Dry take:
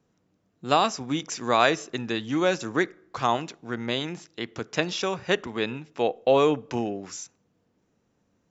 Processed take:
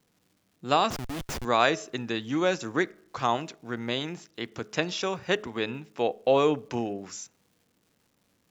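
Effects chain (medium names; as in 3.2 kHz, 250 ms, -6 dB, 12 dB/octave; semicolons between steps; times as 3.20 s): de-hum 211.5 Hz, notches 3; 0.90–1.45 s: Schmitt trigger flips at -32 dBFS; crackle 440 per s -54 dBFS; trim -2 dB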